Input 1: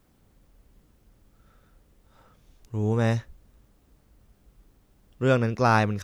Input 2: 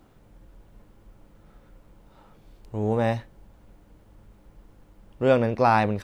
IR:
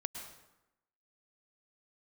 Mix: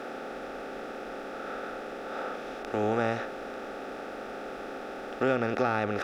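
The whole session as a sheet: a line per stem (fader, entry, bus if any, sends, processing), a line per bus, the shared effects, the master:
-1.5 dB, 0.00 s, no send, per-bin compression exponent 0.4; HPF 290 Hz 24 dB/oct; compressor 5:1, threshold -23 dBFS, peak gain reduction 10 dB
-16.0 dB, 0.00 s, polarity flipped, no send, dry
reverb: off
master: Butterworth band-stop 1000 Hz, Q 4.1; tone controls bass +6 dB, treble -8 dB

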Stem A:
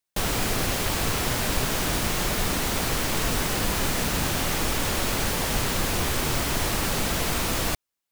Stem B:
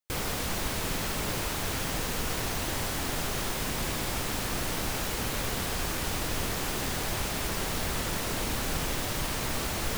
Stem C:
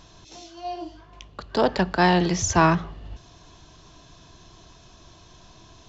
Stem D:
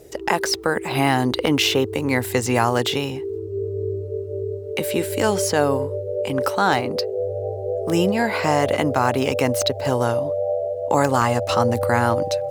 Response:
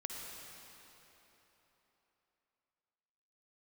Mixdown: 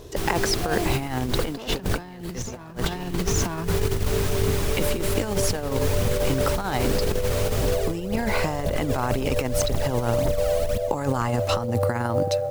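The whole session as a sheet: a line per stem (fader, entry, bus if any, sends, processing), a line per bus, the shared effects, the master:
-9.5 dB, 0.00 s, no send, no echo send, dry
-10.0 dB, 0.80 s, no send, echo send -10 dB, phaser 1.9 Hz, delay 2.1 ms, feedback 75%
-3.5 dB, 0.00 s, send -13.5 dB, echo send -4.5 dB, sample leveller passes 1
-5.5 dB, 0.00 s, send -23.5 dB, no echo send, dry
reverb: on, RT60 3.8 s, pre-delay 48 ms
echo: echo 0.901 s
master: low shelf 260 Hz +7.5 dB; negative-ratio compressor -23 dBFS, ratio -0.5; short-mantissa float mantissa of 4-bit

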